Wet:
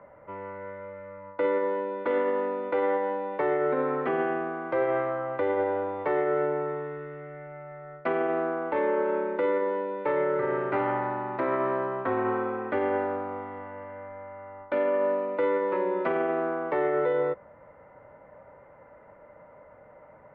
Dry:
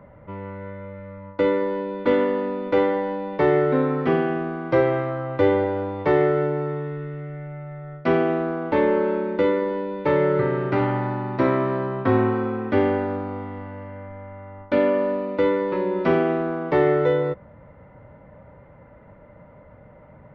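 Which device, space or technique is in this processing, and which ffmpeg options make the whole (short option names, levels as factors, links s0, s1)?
DJ mixer with the lows and highs turned down: -filter_complex "[0:a]acrossover=split=370 2600:gain=0.178 1 0.112[s0][s1][s2];[s0][s1][s2]amix=inputs=3:normalize=0,alimiter=limit=0.126:level=0:latency=1:release=41"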